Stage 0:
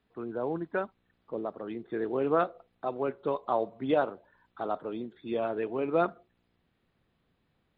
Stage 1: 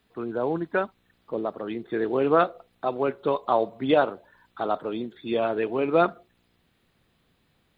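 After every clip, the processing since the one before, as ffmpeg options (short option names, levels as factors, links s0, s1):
-af "highshelf=f=3100:g=9.5,volume=1.88"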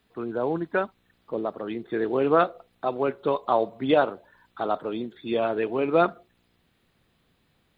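-af anull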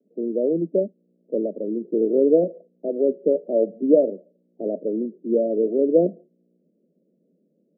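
-af "asuperpass=centerf=320:order=20:qfactor=0.72,volume=2"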